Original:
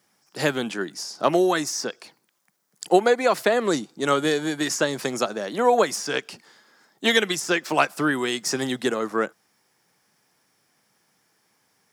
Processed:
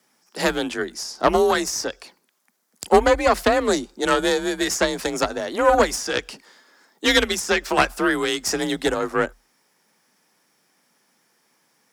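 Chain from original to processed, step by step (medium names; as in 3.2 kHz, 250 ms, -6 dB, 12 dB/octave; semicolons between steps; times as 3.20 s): Chebyshev shaper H 4 -11 dB, 5 -25 dB, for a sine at -3 dBFS; frequency shift +38 Hz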